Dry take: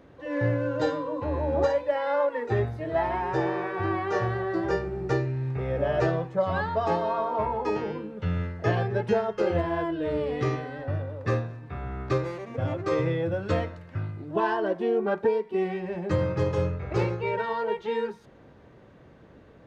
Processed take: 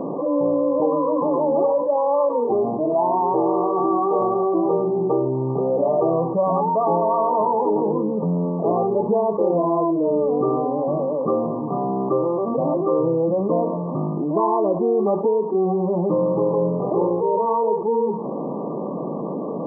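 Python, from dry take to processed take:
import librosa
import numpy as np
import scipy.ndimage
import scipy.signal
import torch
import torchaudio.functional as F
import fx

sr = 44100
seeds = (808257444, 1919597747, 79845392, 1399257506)

y = fx.brickwall_bandpass(x, sr, low_hz=150.0, high_hz=1200.0)
y = fx.env_flatten(y, sr, amount_pct=70)
y = F.gain(torch.from_numpy(y), 2.5).numpy()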